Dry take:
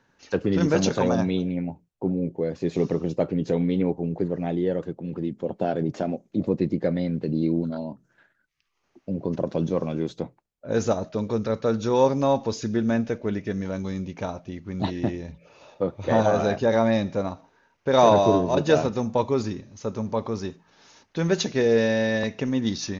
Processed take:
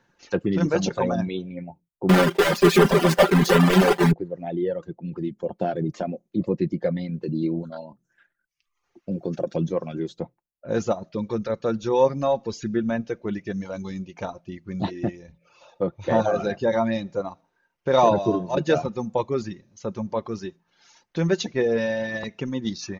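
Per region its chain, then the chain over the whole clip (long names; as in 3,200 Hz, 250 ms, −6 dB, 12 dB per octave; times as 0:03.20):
0:02.09–0:04.13: one scale factor per block 3 bits + mid-hump overdrive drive 29 dB, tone 5,100 Hz, clips at −8.5 dBFS + comb filter 5.1 ms, depth 92%
0:09.11–0:09.56: high-shelf EQ 4,100 Hz +7.5 dB + notch comb filter 1,000 Hz
whole clip: reverb reduction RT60 1.3 s; dynamic equaliser 6,200 Hz, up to −4 dB, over −46 dBFS, Q 0.75; comb filter 5.7 ms, depth 33%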